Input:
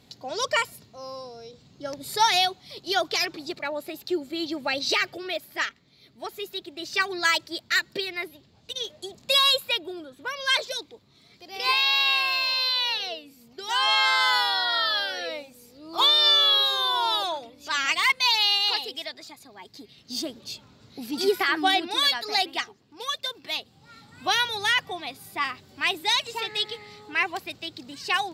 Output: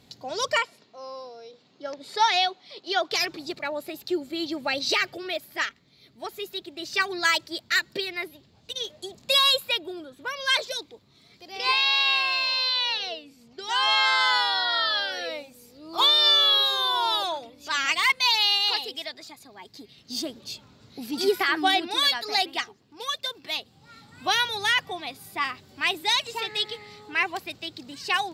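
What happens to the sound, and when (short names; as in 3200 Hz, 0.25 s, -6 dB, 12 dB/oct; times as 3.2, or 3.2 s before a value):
0.58–3.11 BPF 320–4500 Hz
11.52–15.12 LPF 8000 Hz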